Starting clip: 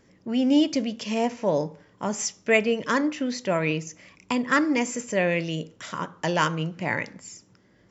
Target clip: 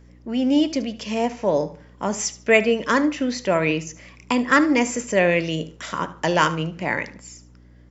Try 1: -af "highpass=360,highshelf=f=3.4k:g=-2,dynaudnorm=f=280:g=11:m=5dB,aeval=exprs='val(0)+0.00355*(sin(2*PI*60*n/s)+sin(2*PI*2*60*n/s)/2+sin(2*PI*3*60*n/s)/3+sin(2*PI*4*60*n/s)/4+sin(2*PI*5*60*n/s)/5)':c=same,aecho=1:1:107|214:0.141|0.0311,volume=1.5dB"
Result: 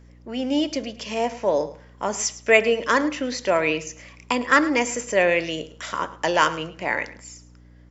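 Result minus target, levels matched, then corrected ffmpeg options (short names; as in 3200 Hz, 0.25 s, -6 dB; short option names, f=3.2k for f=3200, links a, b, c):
echo 33 ms late; 125 Hz band -8.0 dB
-af "highpass=170,highshelf=f=3.4k:g=-2,dynaudnorm=f=280:g=11:m=5dB,aeval=exprs='val(0)+0.00355*(sin(2*PI*60*n/s)+sin(2*PI*2*60*n/s)/2+sin(2*PI*3*60*n/s)/3+sin(2*PI*4*60*n/s)/4+sin(2*PI*5*60*n/s)/5)':c=same,aecho=1:1:74|148:0.141|0.0311,volume=1.5dB"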